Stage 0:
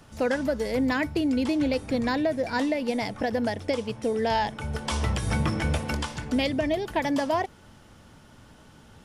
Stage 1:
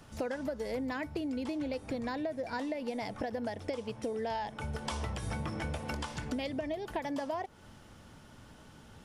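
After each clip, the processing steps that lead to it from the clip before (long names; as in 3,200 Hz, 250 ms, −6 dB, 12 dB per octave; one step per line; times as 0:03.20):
dynamic equaliser 730 Hz, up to +4 dB, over −37 dBFS, Q 0.81
downward compressor 6 to 1, threshold −31 dBFS, peak gain reduction 12.5 dB
level −2.5 dB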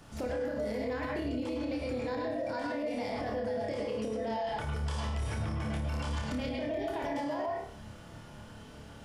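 flutter between parallel walls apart 4.8 metres, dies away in 0.39 s
convolution reverb RT60 0.40 s, pre-delay 99 ms, DRR −0.5 dB
brickwall limiter −26.5 dBFS, peak gain reduction 9.5 dB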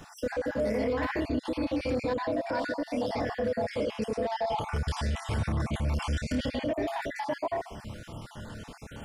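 time-frequency cells dropped at random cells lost 38%
in parallel at −6.5 dB: soft clipping −36.5 dBFS, distortion −10 dB
on the sum: level +4 dB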